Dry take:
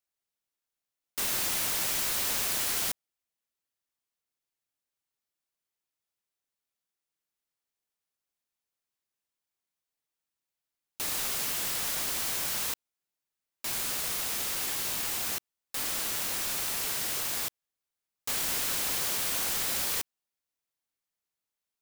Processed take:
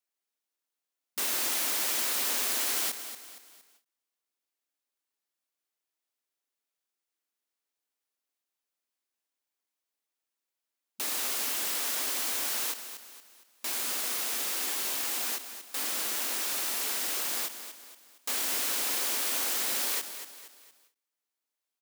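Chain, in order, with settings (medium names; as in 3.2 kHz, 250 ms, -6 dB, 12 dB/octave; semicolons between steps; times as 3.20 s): brick-wall FIR high-pass 210 Hz; feedback delay 232 ms, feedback 42%, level -11 dB; endings held to a fixed fall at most 250 dB/s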